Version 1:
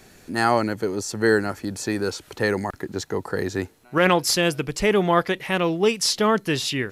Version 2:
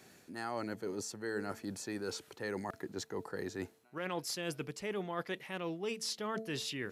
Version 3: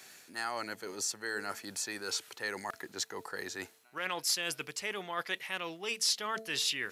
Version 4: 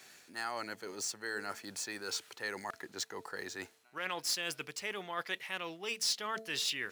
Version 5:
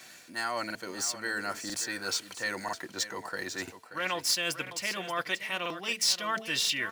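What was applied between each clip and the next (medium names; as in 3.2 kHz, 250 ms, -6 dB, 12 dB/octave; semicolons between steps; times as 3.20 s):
high-pass 120 Hz 12 dB/octave; de-hum 221.9 Hz, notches 3; reverse; compression 4:1, threshold -28 dBFS, peak gain reduction 13.5 dB; reverse; trim -8.5 dB
tilt shelf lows -9.5 dB, about 650 Hz
median filter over 3 samples; trim -2 dB
comb of notches 420 Hz; delay 581 ms -12 dB; crackling interface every 0.99 s, samples 2048, repeat, from 0.66 s; trim +7.5 dB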